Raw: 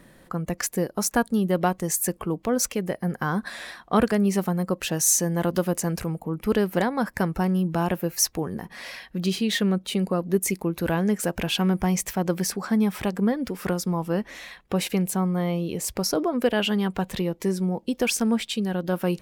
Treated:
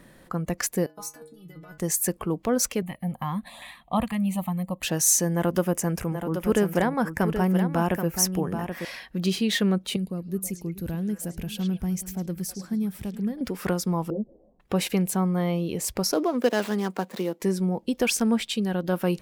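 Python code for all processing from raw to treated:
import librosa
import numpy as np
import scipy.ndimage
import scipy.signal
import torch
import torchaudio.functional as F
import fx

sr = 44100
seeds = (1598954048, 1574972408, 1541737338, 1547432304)

y = fx.chain(x, sr, fx.highpass(hz=60.0, slope=12),
    fx.over_compress(threshold_db=-24.0, ratio=-0.5),
    fx.stiff_resonator(f0_hz=150.0, decay_s=0.44, stiffness=0.008), at=(0.86, 1.78))
y = fx.chain(y, sr, fx.filter_lfo_notch(shape='saw_up', hz=2.5, low_hz=350.0, high_hz=2700.0, q=1.4),
    fx.fixed_phaser(hz=1500.0, stages=6), at=(2.82, 4.83))
y = fx.chain(y, sr, fx.peak_eq(hz=4200.0, db=-10.0, octaves=0.35),
    fx.echo_single(ms=779, db=-8.0), at=(5.34, 8.85))
y = fx.chain(y, sr, fx.curve_eq(hz=(120.0, 1000.0, 5600.0, 11000.0), db=(0, -19, -10, -3)),
    fx.echo_stepped(ms=106, hz=4500.0, octaves=-1.4, feedback_pct=70, wet_db=-4.5), at=(9.96, 13.41))
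y = fx.chain(y, sr, fx.steep_lowpass(hz=580.0, slope=36),
    fx.ensemble(), at=(14.1, 14.6))
y = fx.chain(y, sr, fx.median_filter(points=15),
    fx.highpass(hz=210.0, slope=24),
    fx.high_shelf(hz=3700.0, db=6.5), at=(16.12, 17.42))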